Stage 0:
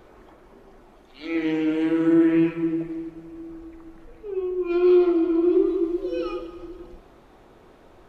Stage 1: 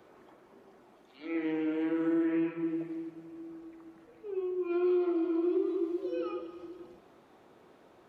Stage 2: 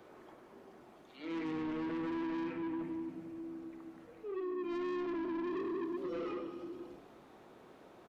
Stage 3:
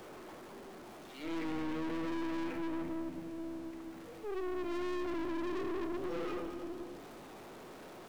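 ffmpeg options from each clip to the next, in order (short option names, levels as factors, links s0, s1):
-filter_complex "[0:a]highpass=140,acrossover=split=310|2500[s0][s1][s2];[s0]acompressor=threshold=0.0224:ratio=4[s3];[s1]acompressor=threshold=0.0891:ratio=4[s4];[s2]acompressor=threshold=0.00126:ratio=4[s5];[s3][s4][s5]amix=inputs=3:normalize=0,volume=0.473"
-filter_complex "[0:a]asoftclip=type=tanh:threshold=0.0141,asplit=5[s0][s1][s2][s3][s4];[s1]adelay=99,afreqshift=-69,volume=0.266[s5];[s2]adelay=198,afreqshift=-138,volume=0.0933[s6];[s3]adelay=297,afreqshift=-207,volume=0.0327[s7];[s4]adelay=396,afreqshift=-276,volume=0.0114[s8];[s0][s5][s6][s7][s8]amix=inputs=5:normalize=0,volume=1.12"
-af "aeval=exprs='val(0)+0.5*0.00316*sgn(val(0))':c=same,aeval=exprs='(tanh(89.1*val(0)+0.7)-tanh(0.7))/89.1':c=same,volume=1.68"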